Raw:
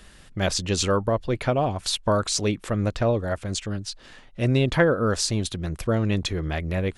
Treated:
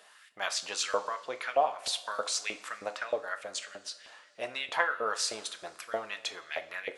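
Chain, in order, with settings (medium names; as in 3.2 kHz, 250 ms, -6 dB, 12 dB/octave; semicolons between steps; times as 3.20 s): LFO high-pass saw up 3.2 Hz 580–2300 Hz; two-slope reverb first 0.4 s, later 2.9 s, from -19 dB, DRR 8 dB; trim -7 dB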